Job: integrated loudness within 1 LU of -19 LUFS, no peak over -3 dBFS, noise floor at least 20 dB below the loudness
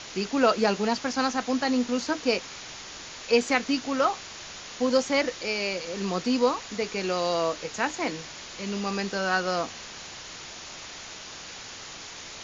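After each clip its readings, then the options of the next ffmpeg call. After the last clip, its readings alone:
noise floor -42 dBFS; noise floor target -47 dBFS; loudness -27.0 LUFS; peak -7.5 dBFS; loudness target -19.0 LUFS
-> -af "afftdn=nr=6:nf=-42"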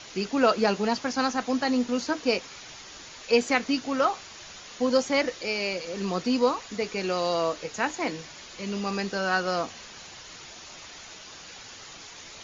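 noise floor -45 dBFS; noise floor target -47 dBFS
-> -af "afftdn=nr=6:nf=-45"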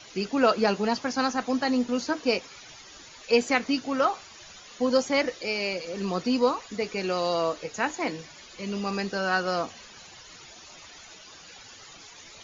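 noise floor -48 dBFS; loudness -27.0 LUFS; peak -7.5 dBFS; loudness target -19.0 LUFS
-> -af "volume=8dB,alimiter=limit=-3dB:level=0:latency=1"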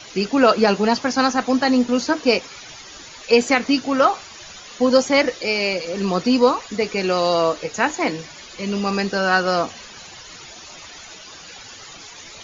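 loudness -19.0 LUFS; peak -3.0 dBFS; noise floor -40 dBFS

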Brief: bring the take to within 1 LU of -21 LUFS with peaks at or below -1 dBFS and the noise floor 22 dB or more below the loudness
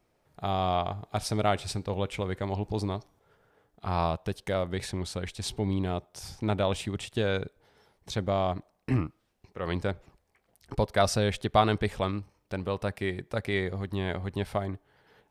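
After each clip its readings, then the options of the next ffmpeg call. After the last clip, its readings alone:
loudness -31.0 LUFS; peak -7.5 dBFS; loudness target -21.0 LUFS
-> -af "volume=10dB,alimiter=limit=-1dB:level=0:latency=1"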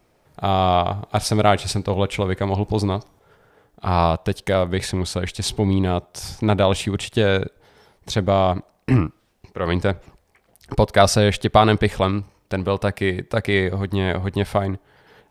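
loudness -21.0 LUFS; peak -1.0 dBFS; noise floor -62 dBFS

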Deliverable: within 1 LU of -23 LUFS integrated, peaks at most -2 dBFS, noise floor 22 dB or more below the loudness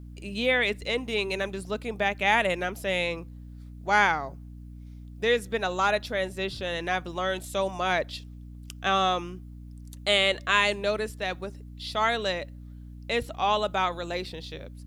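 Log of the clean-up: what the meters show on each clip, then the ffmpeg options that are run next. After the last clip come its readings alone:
hum 60 Hz; harmonics up to 300 Hz; hum level -40 dBFS; loudness -27.0 LUFS; peak -7.0 dBFS; loudness target -23.0 LUFS
-> -af "bandreject=f=60:t=h:w=6,bandreject=f=120:t=h:w=6,bandreject=f=180:t=h:w=6,bandreject=f=240:t=h:w=6,bandreject=f=300:t=h:w=6"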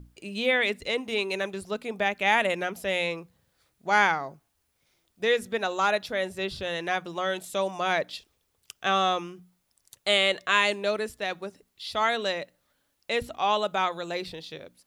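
hum none; loudness -27.0 LUFS; peak -7.5 dBFS; loudness target -23.0 LUFS
-> -af "volume=4dB"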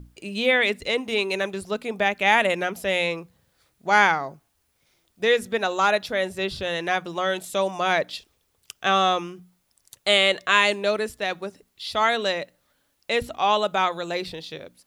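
loudness -23.0 LUFS; peak -3.5 dBFS; noise floor -70 dBFS

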